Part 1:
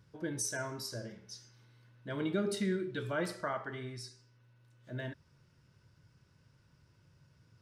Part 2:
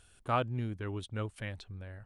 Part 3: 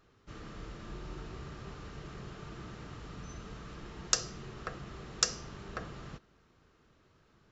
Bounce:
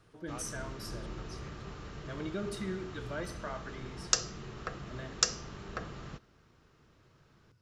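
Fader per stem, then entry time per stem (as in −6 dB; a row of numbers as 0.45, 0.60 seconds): −4.5, −16.5, +1.0 decibels; 0.00, 0.00, 0.00 seconds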